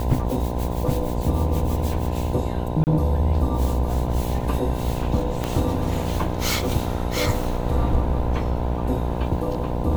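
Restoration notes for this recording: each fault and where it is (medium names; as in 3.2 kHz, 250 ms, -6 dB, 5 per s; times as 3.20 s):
buzz 60 Hz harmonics 17 -27 dBFS
2.84–2.87 s: dropout 29 ms
5.44 s: pop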